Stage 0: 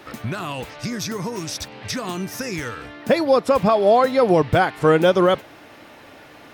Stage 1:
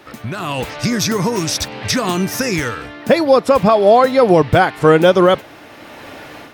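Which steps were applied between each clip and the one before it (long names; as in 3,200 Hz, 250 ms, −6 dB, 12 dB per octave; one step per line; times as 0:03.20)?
automatic gain control gain up to 10.5 dB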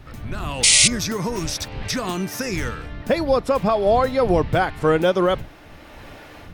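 wind on the microphone 95 Hz −26 dBFS
sound drawn into the spectrogram noise, 0:00.63–0:00.88, 1,900–10,000 Hz −6 dBFS
level −7.5 dB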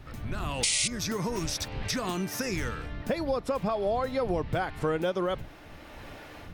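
downward compressor 3 to 1, threshold −23 dBFS, peak gain reduction 9.5 dB
level −4 dB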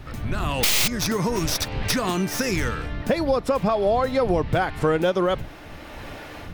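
stylus tracing distortion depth 0.11 ms
level +7.5 dB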